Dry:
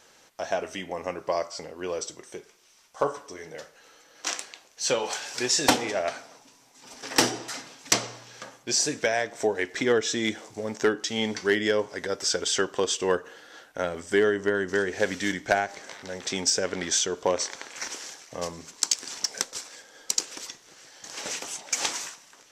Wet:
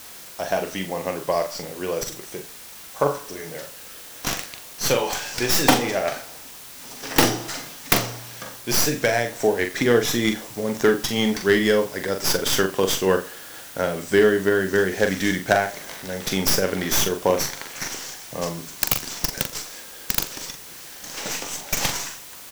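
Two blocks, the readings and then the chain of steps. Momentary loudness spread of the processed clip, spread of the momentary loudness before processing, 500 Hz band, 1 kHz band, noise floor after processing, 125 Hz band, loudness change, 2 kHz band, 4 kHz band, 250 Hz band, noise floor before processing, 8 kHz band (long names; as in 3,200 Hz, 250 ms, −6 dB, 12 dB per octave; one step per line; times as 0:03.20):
16 LU, 17 LU, +5.5 dB, +5.0 dB, −41 dBFS, +11.0 dB, +4.5 dB, +4.5 dB, +3.0 dB, +7.0 dB, −57 dBFS, +1.5 dB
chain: stylus tracing distortion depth 0.18 ms
parametric band 150 Hz +6.5 dB 1.2 octaves
in parallel at −6 dB: bit-depth reduction 6 bits, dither triangular
on the sum: double-tracking delay 42 ms −7 dB
single-tap delay 86 ms −20.5 dB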